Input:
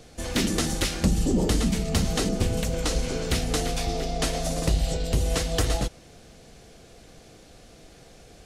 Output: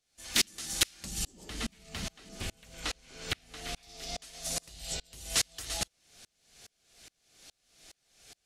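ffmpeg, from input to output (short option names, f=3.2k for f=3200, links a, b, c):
-filter_complex "[0:a]asettb=1/sr,asplit=3[a][b][c];[a]atrim=end=1.454[d];[b]atrim=start=1.45:end=3.83,asetpts=PTS-STARTPTS,afade=t=in:d=0.004:c=qsin,afade=t=out:st=2.376:d=0.004:c=qsin,acrossover=split=3300[e][f];[f]acompressor=threshold=-45dB:ratio=4:attack=1:release=60[g];[e][g]amix=inputs=2:normalize=0[h];[c]atrim=start=3.826[i];[d][h]acrossfade=d=0.004:c1=hsin:c2=qsin[j];[j][i]acrossfade=d=0.004:c1=qsin:c2=hsin,tiltshelf=f=1.2k:g=-9.5,bandreject=f=490:w=12,aeval=exprs='val(0)*pow(10,-34*if(lt(mod(-2.4*n/s,1),2*abs(-2.4)/1000),1-mod(-2.4*n/s,1)/(2*abs(-2.4)/1000),(mod(-2.4*n/s,1)-2*abs(-2.4)/1000)/(1-2*abs(-2.4)/1000))/20)':c=same,volume=-1.5dB"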